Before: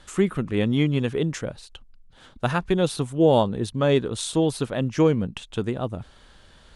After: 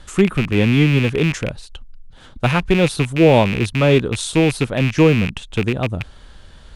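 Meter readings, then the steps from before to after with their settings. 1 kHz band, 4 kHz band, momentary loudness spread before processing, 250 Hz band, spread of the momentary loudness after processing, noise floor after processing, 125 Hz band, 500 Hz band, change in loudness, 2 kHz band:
+5.0 dB, +7.5 dB, 10 LU, +6.5 dB, 9 LU, −43 dBFS, +8.5 dB, +5.0 dB, +7.0 dB, +12.0 dB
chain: loose part that buzzes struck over −31 dBFS, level −17 dBFS
low-shelf EQ 130 Hz +8.5 dB
level +4.5 dB

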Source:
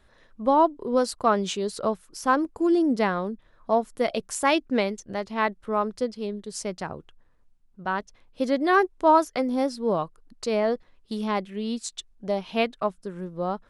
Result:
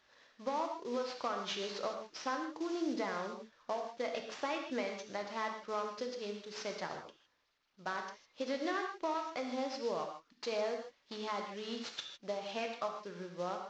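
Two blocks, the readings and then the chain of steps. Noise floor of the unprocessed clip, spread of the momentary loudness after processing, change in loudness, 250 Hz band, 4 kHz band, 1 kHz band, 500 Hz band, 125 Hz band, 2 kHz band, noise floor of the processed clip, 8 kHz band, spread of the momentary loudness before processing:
−60 dBFS, 7 LU, −14.0 dB, −15.5 dB, −7.0 dB, −14.0 dB, −13.0 dB, −17.0 dB, −12.0 dB, −73 dBFS, −13.5 dB, 13 LU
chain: variable-slope delta modulation 32 kbit/s
high-pass filter 690 Hz 6 dB per octave
downward compressor 10 to 1, threshold −30 dBFS, peak gain reduction 13.5 dB
reverb whose tail is shaped and stops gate 180 ms flat, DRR 3 dB
level −4 dB

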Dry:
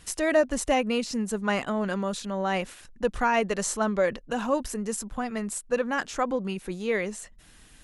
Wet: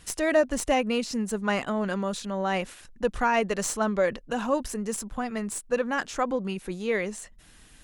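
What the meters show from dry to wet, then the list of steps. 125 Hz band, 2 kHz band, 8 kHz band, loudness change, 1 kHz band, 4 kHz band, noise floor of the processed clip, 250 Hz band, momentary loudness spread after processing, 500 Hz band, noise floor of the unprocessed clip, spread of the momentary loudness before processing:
0.0 dB, 0.0 dB, −0.5 dB, 0.0 dB, 0.0 dB, 0.0 dB, −53 dBFS, 0.0 dB, 8 LU, 0.0 dB, −53 dBFS, 8 LU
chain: stylus tracing distortion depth 0.02 ms

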